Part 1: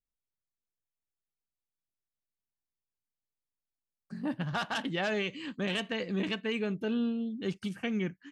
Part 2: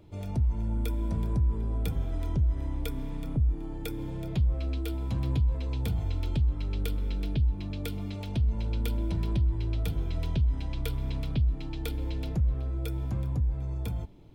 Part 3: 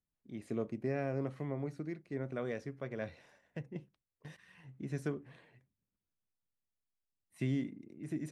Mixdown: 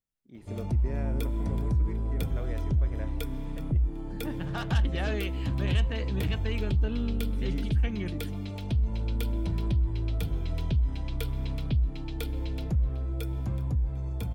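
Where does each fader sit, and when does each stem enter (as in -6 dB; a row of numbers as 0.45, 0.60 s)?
-3.5, 0.0, -3.5 dB; 0.00, 0.35, 0.00 s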